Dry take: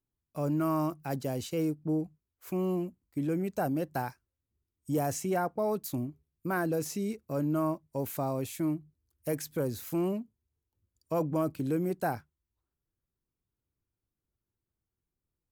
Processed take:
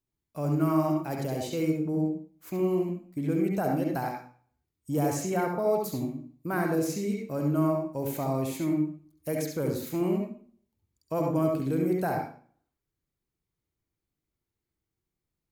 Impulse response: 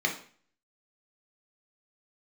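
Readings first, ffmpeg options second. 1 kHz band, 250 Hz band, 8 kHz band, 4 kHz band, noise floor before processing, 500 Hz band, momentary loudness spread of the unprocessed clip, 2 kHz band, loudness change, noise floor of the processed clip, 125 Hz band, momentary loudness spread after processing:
+2.5 dB, +4.0 dB, +1.5 dB, +2.5 dB, under -85 dBFS, +3.5 dB, 8 LU, +2.0 dB, +3.5 dB, under -85 dBFS, +4.0 dB, 8 LU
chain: -filter_complex "[0:a]asplit=2[s0][s1];[1:a]atrim=start_sample=2205,adelay=67[s2];[s1][s2]afir=irnorm=-1:irlink=0,volume=0.355[s3];[s0][s3]amix=inputs=2:normalize=0"

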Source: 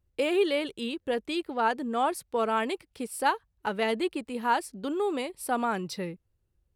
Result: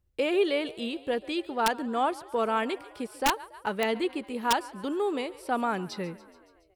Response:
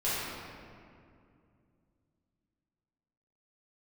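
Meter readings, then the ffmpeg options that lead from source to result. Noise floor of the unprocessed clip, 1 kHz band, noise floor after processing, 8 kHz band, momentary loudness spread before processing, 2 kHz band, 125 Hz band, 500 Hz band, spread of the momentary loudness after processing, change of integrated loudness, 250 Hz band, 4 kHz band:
-75 dBFS, -0.5 dB, -62 dBFS, +1.0 dB, 7 LU, 0.0 dB, no reading, 0.0 dB, 7 LU, 0.0 dB, 0.0 dB, +1.5 dB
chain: -filter_complex "[0:a]asplit=7[s0][s1][s2][s3][s4][s5][s6];[s1]adelay=141,afreqshift=38,volume=0.1[s7];[s2]adelay=282,afreqshift=76,volume=0.0638[s8];[s3]adelay=423,afreqshift=114,volume=0.0407[s9];[s4]adelay=564,afreqshift=152,volume=0.0263[s10];[s5]adelay=705,afreqshift=190,volume=0.0168[s11];[s6]adelay=846,afreqshift=228,volume=0.0107[s12];[s0][s7][s8][s9][s10][s11][s12]amix=inputs=7:normalize=0,acrossover=split=5800[s13][s14];[s14]acompressor=threshold=0.00224:ratio=4:attack=1:release=60[s15];[s13][s15]amix=inputs=2:normalize=0,aeval=exprs='(mod(5.62*val(0)+1,2)-1)/5.62':c=same"

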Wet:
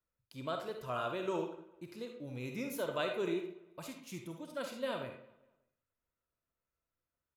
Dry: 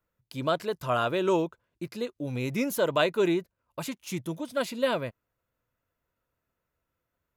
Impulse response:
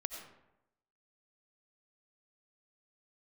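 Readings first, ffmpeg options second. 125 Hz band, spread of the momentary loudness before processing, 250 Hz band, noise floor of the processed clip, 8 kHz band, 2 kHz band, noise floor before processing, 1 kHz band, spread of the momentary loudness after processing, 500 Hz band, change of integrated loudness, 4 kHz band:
-11.5 dB, 14 LU, -11.0 dB, under -85 dBFS, -11.0 dB, -10.5 dB, -84 dBFS, -10.0 dB, 13 LU, -10.5 dB, -10.5 dB, -10.5 dB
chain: -filter_complex "[0:a]asplit=2[s0][s1];[s1]adelay=196,lowpass=f=3300:p=1,volume=0.0944,asplit=2[s2][s3];[s3]adelay=196,lowpass=f=3300:p=1,volume=0.37,asplit=2[s4][s5];[s5]adelay=196,lowpass=f=3300:p=1,volume=0.37[s6];[s0][s2][s4][s6]amix=inputs=4:normalize=0[s7];[1:a]atrim=start_sample=2205,asetrate=83790,aresample=44100[s8];[s7][s8]afir=irnorm=-1:irlink=0,volume=0.596"

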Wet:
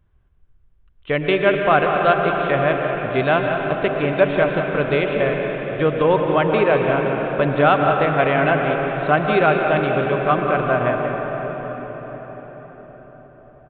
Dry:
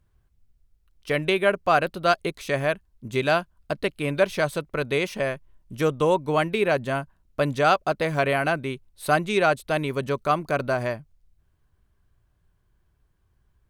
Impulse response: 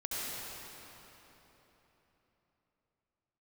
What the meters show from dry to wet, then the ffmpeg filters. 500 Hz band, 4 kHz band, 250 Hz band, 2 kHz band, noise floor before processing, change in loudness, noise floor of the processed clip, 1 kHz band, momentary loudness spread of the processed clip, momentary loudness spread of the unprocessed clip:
+6.5 dB, +1.5 dB, +7.0 dB, +5.5 dB, -68 dBFS, +6.0 dB, -54 dBFS, +6.5 dB, 9 LU, 9 LU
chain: -filter_complex "[0:a]aecho=1:1:186:0.282,asplit=2[s0][s1];[1:a]atrim=start_sample=2205,asetrate=28224,aresample=44100,lowpass=2800[s2];[s1][s2]afir=irnorm=-1:irlink=0,volume=0.422[s3];[s0][s3]amix=inputs=2:normalize=0,aresample=8000,aresample=44100,volume=1.19"

